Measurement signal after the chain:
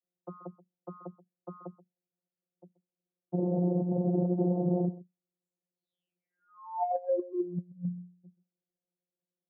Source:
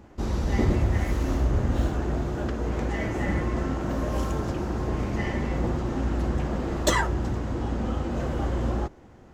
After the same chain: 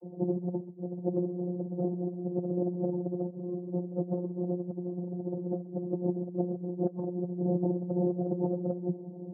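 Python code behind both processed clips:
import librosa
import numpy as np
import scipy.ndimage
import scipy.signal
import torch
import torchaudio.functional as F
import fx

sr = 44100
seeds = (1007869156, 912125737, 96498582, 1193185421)

y = scipy.signal.sosfilt(scipy.signal.ellip(4, 1.0, 70, 670.0, 'lowpass', fs=sr, output='sos'), x)
y = fx.vocoder(y, sr, bands=32, carrier='saw', carrier_hz=178.0)
y = y + 1.0 * np.pad(y, (int(5.9 * sr / 1000.0), 0))[:len(y)]
y = fx.over_compress(y, sr, threshold_db=-31.0, ratio=-0.5)
y = scipy.signal.sosfilt(scipy.signal.butter(2, 130.0, 'highpass', fs=sr, output='sos'), y)
y = y + 10.0 ** (-19.0 / 20.0) * np.pad(y, (int(130 * sr / 1000.0), 0))[:len(y)]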